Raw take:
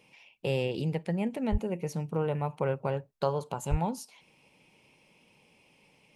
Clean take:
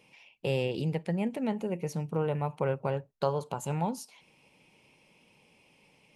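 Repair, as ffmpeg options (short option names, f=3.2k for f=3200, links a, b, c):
-filter_complex "[0:a]asplit=3[a][b][c];[a]afade=t=out:st=1.51:d=0.02[d];[b]highpass=f=140:w=0.5412,highpass=f=140:w=1.3066,afade=t=in:st=1.51:d=0.02,afade=t=out:st=1.63:d=0.02[e];[c]afade=t=in:st=1.63:d=0.02[f];[d][e][f]amix=inputs=3:normalize=0,asplit=3[g][h][i];[g]afade=t=out:st=3.7:d=0.02[j];[h]highpass=f=140:w=0.5412,highpass=f=140:w=1.3066,afade=t=in:st=3.7:d=0.02,afade=t=out:st=3.82:d=0.02[k];[i]afade=t=in:st=3.82:d=0.02[l];[j][k][l]amix=inputs=3:normalize=0"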